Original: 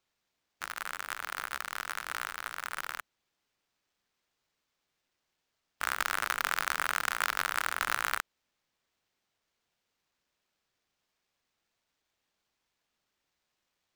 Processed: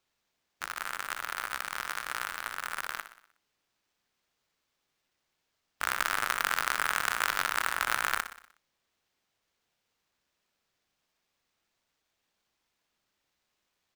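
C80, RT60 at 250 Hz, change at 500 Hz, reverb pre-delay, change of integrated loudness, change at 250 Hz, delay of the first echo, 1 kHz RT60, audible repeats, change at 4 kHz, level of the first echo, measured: no reverb audible, no reverb audible, +2.0 dB, no reverb audible, +2.0 dB, +2.0 dB, 61 ms, no reverb audible, 5, +2.0 dB, −11.5 dB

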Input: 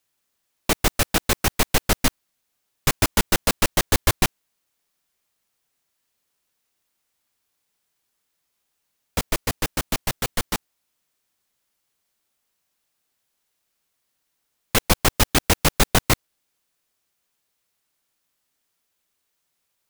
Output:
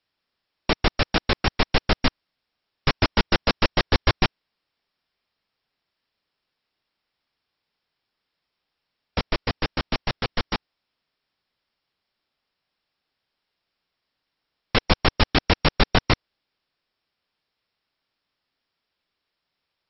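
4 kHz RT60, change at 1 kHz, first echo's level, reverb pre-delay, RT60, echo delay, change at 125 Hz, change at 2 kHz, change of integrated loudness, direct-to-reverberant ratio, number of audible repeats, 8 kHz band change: no reverb audible, 0.0 dB, no echo audible, no reverb audible, no reverb audible, no echo audible, 0.0 dB, 0.0 dB, −2.0 dB, no reverb audible, no echo audible, below −30 dB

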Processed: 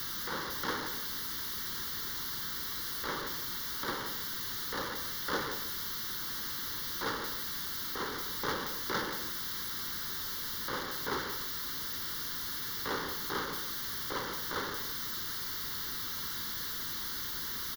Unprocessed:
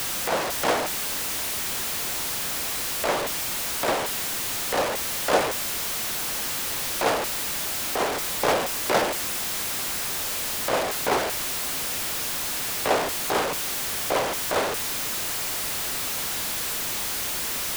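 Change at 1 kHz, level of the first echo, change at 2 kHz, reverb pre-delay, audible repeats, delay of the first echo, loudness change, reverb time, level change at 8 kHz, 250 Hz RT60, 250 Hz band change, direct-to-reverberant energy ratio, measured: −11.5 dB, −10.0 dB, −9.0 dB, no reverb audible, 1, 177 ms, −10.0 dB, no reverb audible, −15.0 dB, no reverb audible, −8.5 dB, no reverb audible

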